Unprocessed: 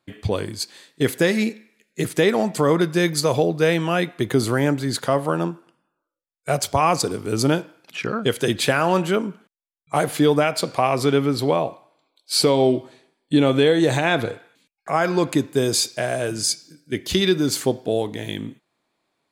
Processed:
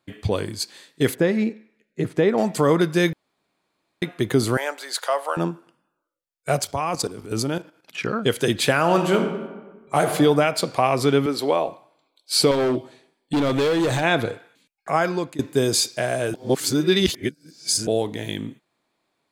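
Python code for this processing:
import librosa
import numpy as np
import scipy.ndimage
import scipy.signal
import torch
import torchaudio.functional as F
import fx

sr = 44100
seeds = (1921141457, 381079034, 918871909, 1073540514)

y = fx.lowpass(x, sr, hz=1100.0, slope=6, at=(1.15, 2.38))
y = fx.highpass(y, sr, hz=580.0, slope=24, at=(4.57, 5.37))
y = fx.level_steps(y, sr, step_db=12, at=(6.62, 7.98))
y = fx.reverb_throw(y, sr, start_s=8.8, length_s=1.29, rt60_s=1.3, drr_db=5.0)
y = fx.highpass(y, sr, hz=300.0, slope=12, at=(11.26, 11.68))
y = fx.clip_hard(y, sr, threshold_db=-17.5, at=(12.51, 14.03))
y = fx.edit(y, sr, fx.room_tone_fill(start_s=3.13, length_s=0.89),
    fx.fade_out_to(start_s=14.98, length_s=0.41, floor_db=-22.0),
    fx.reverse_span(start_s=16.34, length_s=1.53), tone=tone)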